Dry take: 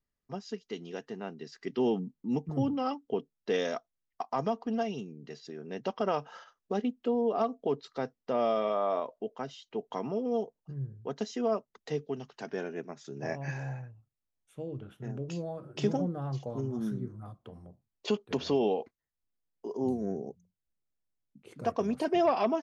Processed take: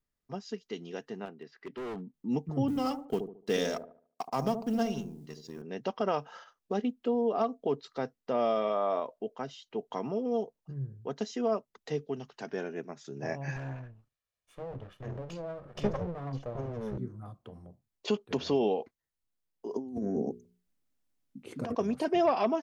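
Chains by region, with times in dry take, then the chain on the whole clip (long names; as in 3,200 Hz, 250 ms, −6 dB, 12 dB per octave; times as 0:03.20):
0:01.25–0:02.14: low-pass filter 2,500 Hz + low-shelf EQ 230 Hz −10 dB + hard clipping −36 dBFS
0:02.68–0:05.62: mu-law and A-law mismatch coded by A + bass and treble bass +6 dB, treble +9 dB + delay with a low-pass on its return 73 ms, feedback 34%, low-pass 670 Hz, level −6.5 dB
0:13.56–0:16.98: lower of the sound and its delayed copy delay 1.7 ms + low-pass filter 2,500 Hz 6 dB per octave + one half of a high-frequency compander encoder only
0:19.73–0:21.75: parametric band 260 Hz +10 dB 0.38 octaves + mains-hum notches 60/120/180/240/300/360/420/480 Hz + compressor whose output falls as the input rises −34 dBFS
whole clip: no processing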